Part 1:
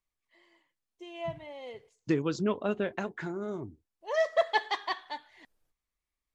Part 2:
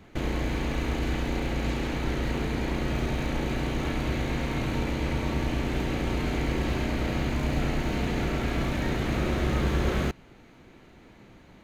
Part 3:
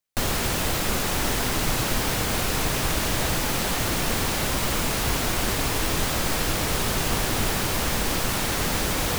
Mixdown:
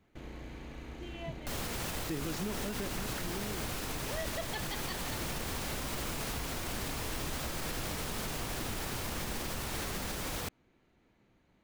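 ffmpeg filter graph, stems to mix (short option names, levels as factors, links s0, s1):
-filter_complex "[0:a]equalizer=f=880:t=o:w=2:g=-11.5,volume=1.06[s0];[1:a]volume=0.141[s1];[2:a]adelay=1300,volume=0.299[s2];[s0][s1][s2]amix=inputs=3:normalize=0,alimiter=level_in=1.41:limit=0.0631:level=0:latency=1:release=58,volume=0.708"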